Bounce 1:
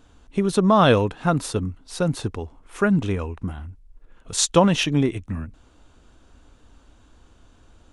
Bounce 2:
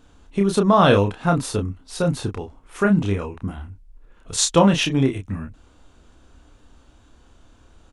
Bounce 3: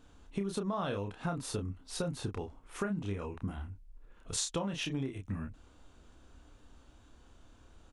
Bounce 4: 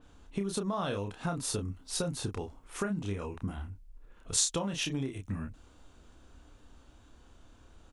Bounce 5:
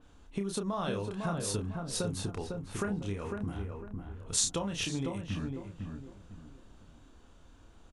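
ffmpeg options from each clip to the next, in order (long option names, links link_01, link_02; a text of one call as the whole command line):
ffmpeg -i in.wav -filter_complex "[0:a]asplit=2[link_01][link_02];[link_02]adelay=30,volume=-5dB[link_03];[link_01][link_03]amix=inputs=2:normalize=0" out.wav
ffmpeg -i in.wav -af "acompressor=threshold=-25dB:ratio=10,volume=-6.5dB" out.wav
ffmpeg -i in.wav -af "adynamicequalizer=threshold=0.00178:dfrequency=4000:dqfactor=0.7:tfrequency=4000:tqfactor=0.7:attack=5:release=100:ratio=0.375:range=3.5:mode=boostabove:tftype=highshelf,volume=1.5dB" out.wav
ffmpeg -i in.wav -filter_complex "[0:a]asplit=2[link_01][link_02];[link_02]adelay=502,lowpass=frequency=1400:poles=1,volume=-4dB,asplit=2[link_03][link_04];[link_04]adelay=502,lowpass=frequency=1400:poles=1,volume=0.34,asplit=2[link_05][link_06];[link_06]adelay=502,lowpass=frequency=1400:poles=1,volume=0.34,asplit=2[link_07][link_08];[link_08]adelay=502,lowpass=frequency=1400:poles=1,volume=0.34[link_09];[link_03][link_05][link_07][link_09]amix=inputs=4:normalize=0[link_10];[link_01][link_10]amix=inputs=2:normalize=0,aresample=32000,aresample=44100,volume=-1dB" out.wav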